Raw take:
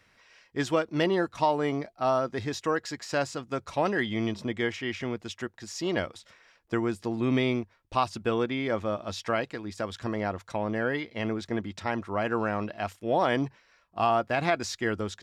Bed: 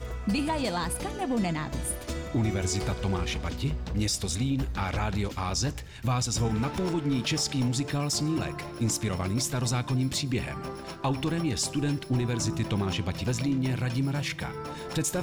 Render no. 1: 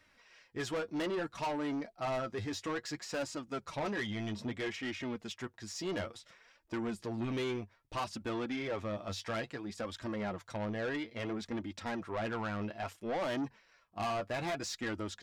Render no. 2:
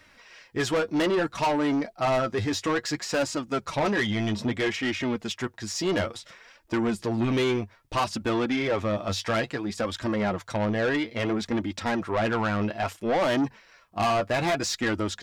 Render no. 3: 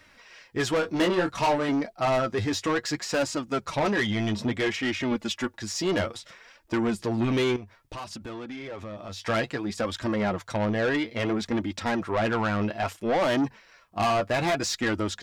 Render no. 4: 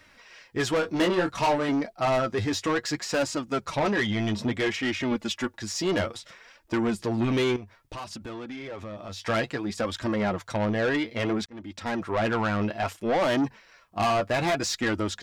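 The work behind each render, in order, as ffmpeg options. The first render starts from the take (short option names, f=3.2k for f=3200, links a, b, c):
-af "flanger=delay=3.2:depth=7.3:regen=29:speed=0.6:shape=sinusoidal,asoftclip=type=tanh:threshold=-31.5dB"
-af "volume=11dB"
-filter_complex "[0:a]asettb=1/sr,asplit=3[a][b][c];[a]atrim=end=0.814[d];[b]atrim=start=0.81:end=1.69,asetpts=PTS-STARTPTS,afade=t=in:d=0.004:c=qsin,afade=t=out:st=0.876:d=0.004:c=qsin,asplit=2[e][f];[f]adelay=22,volume=-5dB[g];[e][g]amix=inputs=2:normalize=0,atrim=end_sample=38808[h];[c]atrim=start=1.686[i];[d][h]acrossfade=d=0.004:c1=hsin:c2=qsin[j];[j][i]acrossfade=d=0.004:c1=qsin:c2=hsin,asettb=1/sr,asplit=3[k][l][m];[k]atrim=end=5.114[n];[l]atrim=start=5.11:end=5.62,asetpts=PTS-STARTPTS,afade=t=in:d=0.004:c=qsin,afade=t=out:st=0.506:d=0.004:c=qsin,aecho=1:1:3.5:0.65,atrim=end_sample=22491[o];[m]atrim=start=5.616[p];[n][o]acrossfade=d=0.004:c1=hsin:c2=qsin[q];[q][p]acrossfade=d=0.004:c1=qsin:c2=hsin,asettb=1/sr,asplit=3[r][s][t];[r]atrim=end=7.564[u];[s]atrim=start=7.56:end=9.26,asetpts=PTS-STARTPTS,afade=t=in:d=0.004:c=qsin,afade=t=out:st=1.696:d=0.004:c=qsin,acompressor=threshold=-36dB:ratio=6:attack=3.2:release=140:knee=1:detection=peak[v];[t]atrim=start=9.256[w];[u][v]acrossfade=d=0.004:c1=hsin:c2=qsin[x];[x][w]acrossfade=d=0.004:c1=qsin:c2=hsin"
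-filter_complex "[0:a]asettb=1/sr,asplit=3[a][b][c];[a]atrim=end=3.774[d];[b]atrim=start=3.77:end=4.28,asetpts=PTS-STARTPTS,afade=t=in:d=0.004:c=qsin,afade=t=out:st=0.506:d=0.004:c=qsin,highshelf=f=8.7k:g=-5.5[e];[c]atrim=start=4.276[f];[d][e]acrossfade=d=0.004:c1=hsin:c2=qsin[g];[g][f]acrossfade=d=0.004:c1=qsin:c2=hsin,asplit=2[h][i];[h]atrim=end=11.46,asetpts=PTS-STARTPTS,afade=t=out:st=11.456:d=0.004:c=hsin[j];[i]atrim=start=11.46,asetpts=PTS-STARTPTS,afade=t=in:d=0.88:c=qsin[k];[j][k]concat=n=2:v=0:a=1"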